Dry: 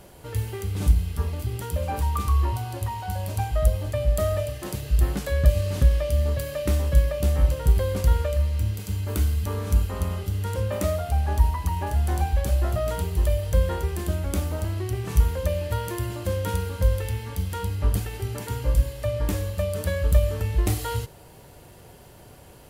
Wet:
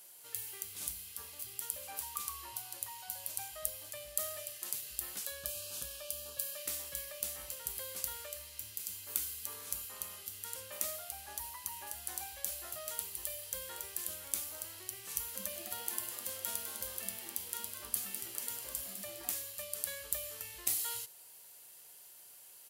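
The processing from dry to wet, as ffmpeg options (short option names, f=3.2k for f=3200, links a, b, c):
-filter_complex "[0:a]asettb=1/sr,asplit=3[a][b][c];[a]atrim=end=5.254[d];[b]atrim=start=5.25:end=6.56,asetpts=PTS-STARTPTS,afade=t=in:d=0.004:c=qsin,afade=t=out:st=1.306:d=0.004:c=qsin,asuperstop=centerf=2000:order=4:qfactor=3.4[e];[c]atrim=start=6.556[f];[d][e]acrossfade=d=0.004:c1=hsin:c2=qsin[g];[g][f]acrossfade=d=0.004:c1=qsin:c2=hsin,asplit=2[h][i];[i]afade=t=in:st=13.23:d=0.01,afade=t=out:st=13.85:d=0.01,aecho=0:1:510|1020|1530|2040|2550|3060:0.266073|0.14634|0.0804869|0.0442678|0.0243473|0.013391[j];[h][j]amix=inputs=2:normalize=0,asettb=1/sr,asplit=3[k][l][m];[k]atrim=end=15.134[n];[l]atrim=start=15.13:end=19.31,asetpts=PTS-STARTPTS,afade=t=in:d=0.004:c=qsin,afade=t=out:st=4.176:d=0.004:c=qsin,asplit=6[o][p][q][r][s][t];[p]adelay=204,afreqshift=140,volume=-8dB[u];[q]adelay=408,afreqshift=280,volume=-15.1dB[v];[r]adelay=612,afreqshift=420,volume=-22.3dB[w];[s]adelay=816,afreqshift=560,volume=-29.4dB[x];[t]adelay=1020,afreqshift=700,volume=-36.5dB[y];[o][u][v][w][x][y]amix=inputs=6:normalize=0,atrim=end_sample=184338[z];[m]atrim=start=19.306[aa];[n][z]acrossfade=d=0.004:c1=hsin:c2=qsin[ab];[ab][aa]acrossfade=d=0.004:c1=qsin:c2=hsin,aderivative"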